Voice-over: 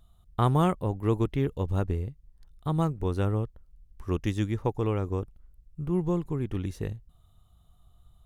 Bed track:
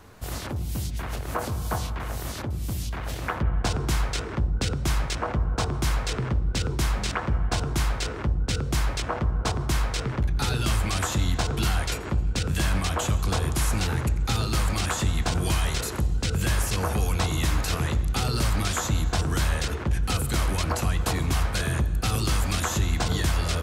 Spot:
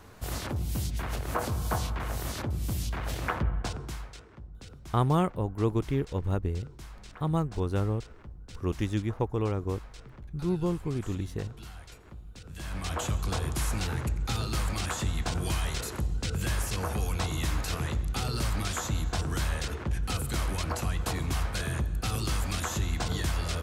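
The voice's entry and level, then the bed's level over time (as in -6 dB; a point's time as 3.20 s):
4.55 s, -1.5 dB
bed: 3.35 s -1.5 dB
4.29 s -21 dB
12.43 s -21 dB
12.93 s -5.5 dB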